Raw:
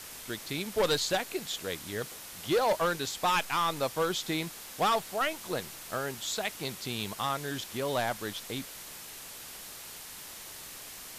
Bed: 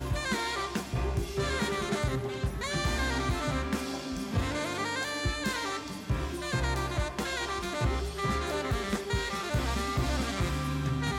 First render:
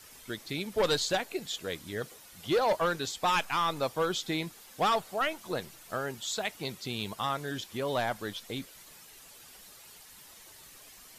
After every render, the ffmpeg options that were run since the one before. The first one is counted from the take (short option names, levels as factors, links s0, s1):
-af "afftdn=nr=10:nf=-45"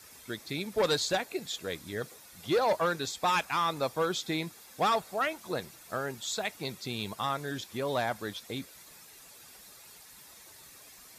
-af "highpass=45,bandreject=f=3000:w=10"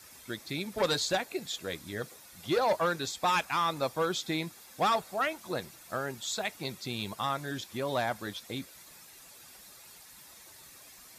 -af "bandreject=f=440:w=12"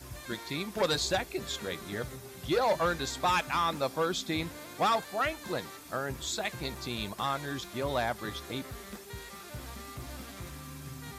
-filter_complex "[1:a]volume=0.211[s0];[0:a][s0]amix=inputs=2:normalize=0"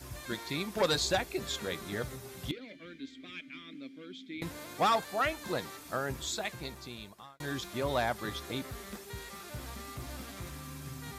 -filter_complex "[0:a]asettb=1/sr,asplit=3[s0][s1][s2];[s0]atrim=end=2.514[s3];[s1]atrim=start=2.51:end=4.42,asetpts=PTS-STARTPTS,afade=t=in:d=0.004:c=qsin,afade=t=out:st=1.906:d=0.004:c=qsin,asplit=3[s4][s5][s6];[s4]bandpass=f=270:t=q:w=8,volume=1[s7];[s5]bandpass=f=2290:t=q:w=8,volume=0.501[s8];[s6]bandpass=f=3010:t=q:w=8,volume=0.355[s9];[s7][s8][s9]amix=inputs=3:normalize=0[s10];[s2]atrim=start=4.416[s11];[s3][s10]acrossfade=d=0.004:c1=hsin:c2=qsin[s12];[s12][s11]acrossfade=d=0.004:c1=qsin:c2=hsin,asplit=2[s13][s14];[s13]atrim=end=7.4,asetpts=PTS-STARTPTS,afade=t=out:st=6.11:d=1.29[s15];[s14]atrim=start=7.4,asetpts=PTS-STARTPTS,afade=t=in:d=0.004:c=hsin[s16];[s15][s16]concat=n=2:v=0:a=1"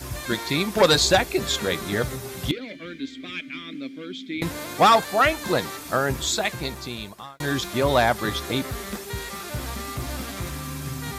-af "volume=3.76"